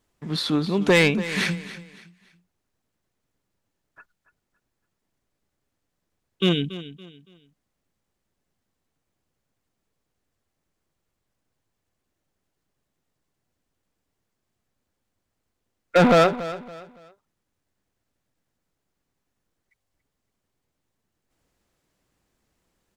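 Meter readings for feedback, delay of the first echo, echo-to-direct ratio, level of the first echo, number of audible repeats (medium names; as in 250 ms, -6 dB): 32%, 282 ms, -14.5 dB, -15.0 dB, 3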